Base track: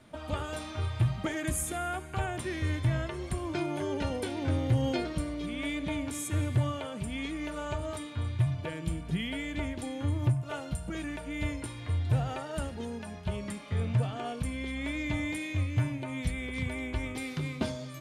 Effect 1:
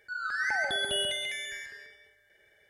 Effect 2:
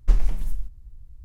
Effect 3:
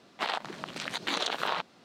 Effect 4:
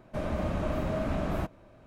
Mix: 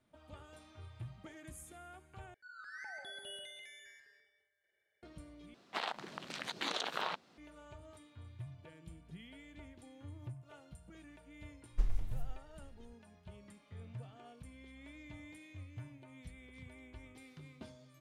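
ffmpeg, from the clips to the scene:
-filter_complex "[0:a]volume=-19.5dB[a];[1:a]lowshelf=f=120:g=-9[b];[a]asplit=3[c][d][e];[c]atrim=end=2.344[f];[b]atrim=end=2.69,asetpts=PTS-STARTPTS,volume=-18dB[g];[d]atrim=start=5.026:end=5.544[h];[3:a]atrim=end=1.84,asetpts=PTS-STARTPTS,volume=-7dB[i];[e]atrim=start=7.376[j];[2:a]atrim=end=1.24,asetpts=PTS-STARTPTS,volume=-14dB,afade=t=in:d=0.004:c=hsin,afade=t=out:st=1.236:d=0.004:c=hsin,adelay=515970S[k];[f][g]acrossfade=d=0.004:c1=hsin:c2=hsin[l];[l][h]acrossfade=d=0.004:c1=hsin:c2=hsin[m];[m][i]acrossfade=d=0.004:c1=hsin:c2=hsin[n];[n][j]acrossfade=d=0.004:c1=hsin:c2=hsin[o];[o][k]amix=inputs=2:normalize=0"

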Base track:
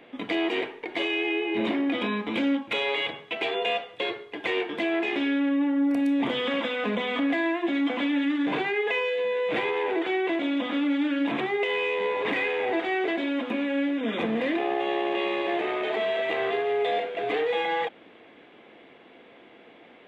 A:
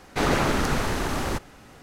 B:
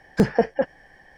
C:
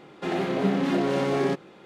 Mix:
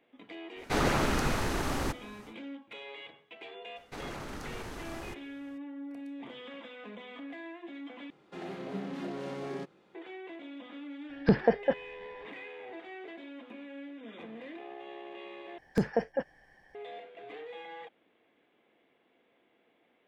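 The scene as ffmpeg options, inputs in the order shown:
-filter_complex "[1:a]asplit=2[a][b];[2:a]asplit=2[c][d];[0:a]volume=-18.5dB[e];[b]alimiter=limit=-16.5dB:level=0:latency=1:release=22[f];[c]aresample=11025,aresample=44100[g];[e]asplit=3[h][i][j];[h]atrim=end=8.104[k];[3:a]atrim=end=1.85,asetpts=PTS-STARTPTS,volume=-14dB[l];[i]atrim=start=9.946:end=15.584[m];[d]atrim=end=1.17,asetpts=PTS-STARTPTS,volume=-9.5dB[n];[j]atrim=start=16.746[o];[a]atrim=end=1.82,asetpts=PTS-STARTPTS,volume=-5dB,afade=t=in:d=0.1,afade=t=out:st=1.72:d=0.1,adelay=540[p];[f]atrim=end=1.82,asetpts=PTS-STARTPTS,volume=-16dB,afade=t=in:d=0.004:c=hsin,afade=t=out:st=1.816:d=0.004:c=hsin,adelay=3760[q];[g]atrim=end=1.17,asetpts=PTS-STARTPTS,volume=-5dB,afade=t=in:d=0.004:c=hsin,afade=t=out:st=1.166:d=0.004:c=hsin,adelay=11090[r];[k][l]acrossfade=d=0.004:c1=hsin:c2=hsin[s];[s][m]acrossfade=d=0.004:c1=hsin:c2=hsin[t];[t][n]acrossfade=d=0.004:c1=hsin:c2=hsin[u];[u][o]acrossfade=d=0.004:c1=hsin:c2=hsin[v];[v][p][q][r]amix=inputs=4:normalize=0"

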